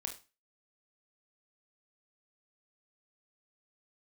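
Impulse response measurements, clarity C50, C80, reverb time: 10.5 dB, 17.0 dB, 0.30 s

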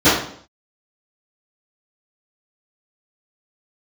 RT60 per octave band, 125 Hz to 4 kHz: 0.65 s, 0.65 s, 0.60 s, 0.55 s, 0.50 s, 0.55 s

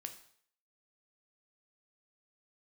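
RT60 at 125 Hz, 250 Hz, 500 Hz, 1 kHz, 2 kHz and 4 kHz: 0.50 s, 0.50 s, 0.60 s, 0.60 s, 0.60 s, 0.55 s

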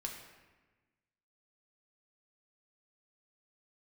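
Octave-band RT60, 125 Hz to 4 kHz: 1.6 s, 1.6 s, 1.3 s, 1.2 s, 1.2 s, 0.90 s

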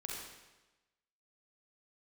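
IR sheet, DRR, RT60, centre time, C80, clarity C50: -3.0 dB, 1.1 s, 78 ms, 2.0 dB, -0.5 dB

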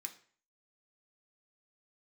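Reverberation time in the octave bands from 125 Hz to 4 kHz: 0.50 s, 0.45 s, 0.45 s, 0.45 s, 0.50 s, 0.40 s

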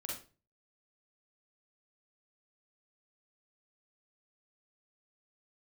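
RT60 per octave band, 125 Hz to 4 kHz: 0.55 s, 0.45 s, 0.40 s, 0.30 s, 0.30 s, 0.30 s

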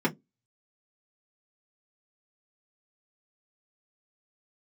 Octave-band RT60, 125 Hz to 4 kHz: 0.20 s, 0.25 s, 0.20 s, 0.10 s, 0.10 s, 0.10 s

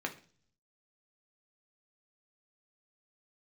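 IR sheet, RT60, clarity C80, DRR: 0.45 s, 18.5 dB, 2.0 dB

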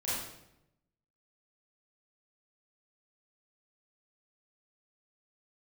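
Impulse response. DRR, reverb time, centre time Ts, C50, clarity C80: -11.0 dB, 0.85 s, 78 ms, -2.0 dB, 2.5 dB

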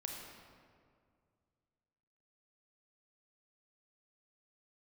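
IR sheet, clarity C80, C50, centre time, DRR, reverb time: 3.0 dB, 1.5 dB, 83 ms, 0.0 dB, 2.1 s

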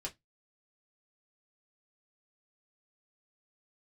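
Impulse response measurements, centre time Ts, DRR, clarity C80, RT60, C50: 10 ms, -1.5 dB, 34.0 dB, 0.15 s, 21.5 dB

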